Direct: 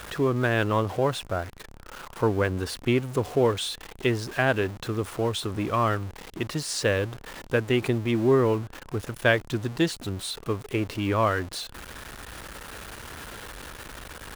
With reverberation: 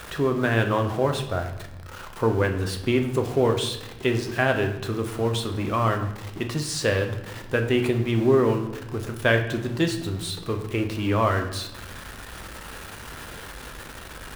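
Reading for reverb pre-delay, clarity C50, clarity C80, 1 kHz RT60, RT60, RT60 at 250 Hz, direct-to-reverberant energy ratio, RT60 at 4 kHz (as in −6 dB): 8 ms, 9.5 dB, 11.5 dB, 0.90 s, 0.95 s, 1.4 s, 4.5 dB, 0.70 s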